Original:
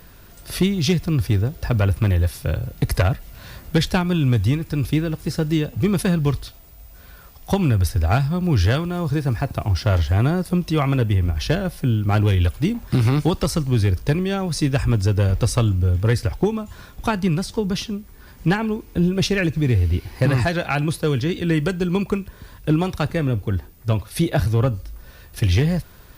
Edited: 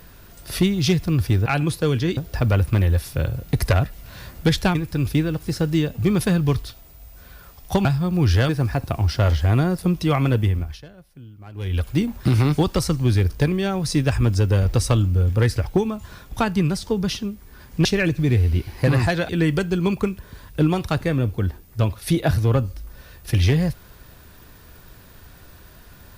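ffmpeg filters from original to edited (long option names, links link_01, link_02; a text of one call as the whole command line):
ffmpeg -i in.wav -filter_complex "[0:a]asplit=10[link_01][link_02][link_03][link_04][link_05][link_06][link_07][link_08][link_09][link_10];[link_01]atrim=end=1.462[link_11];[link_02]atrim=start=20.668:end=21.382[link_12];[link_03]atrim=start=1.458:end=4.042[link_13];[link_04]atrim=start=4.528:end=7.632[link_14];[link_05]atrim=start=8.148:end=8.792[link_15];[link_06]atrim=start=9.158:end=11.49,asetpts=PTS-STARTPTS,afade=type=out:start_time=1.952:duration=0.38:silence=0.0749894[link_16];[link_07]atrim=start=11.49:end=12.21,asetpts=PTS-STARTPTS,volume=-22.5dB[link_17];[link_08]atrim=start=12.21:end=18.522,asetpts=PTS-STARTPTS,afade=type=in:duration=0.38:silence=0.0749894[link_18];[link_09]atrim=start=19.228:end=20.672[link_19];[link_10]atrim=start=21.378[link_20];[link_11][link_12]acrossfade=duration=0.004:curve1=hsin:curve2=hsin[link_21];[link_21][link_13]acrossfade=duration=0.004:curve1=hsin:curve2=hsin[link_22];[link_22][link_14]acrossfade=duration=0.004:curve1=hsin:curve2=hsin[link_23];[link_23][link_15]acrossfade=duration=0.004:curve1=hsin:curve2=hsin[link_24];[link_16][link_17][link_18]concat=n=3:v=0:a=1[link_25];[link_24][link_25]acrossfade=duration=0.004:curve1=hsin:curve2=hsin[link_26];[link_26][link_19]acrossfade=duration=0.004:curve1=hsin:curve2=hsin[link_27];[link_27][link_20]acrossfade=duration=0.004:curve1=hsin:curve2=hsin" out.wav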